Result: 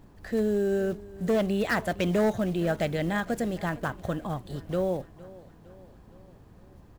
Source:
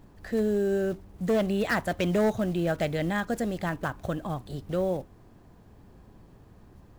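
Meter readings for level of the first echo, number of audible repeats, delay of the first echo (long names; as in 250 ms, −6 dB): −20.0 dB, 3, 460 ms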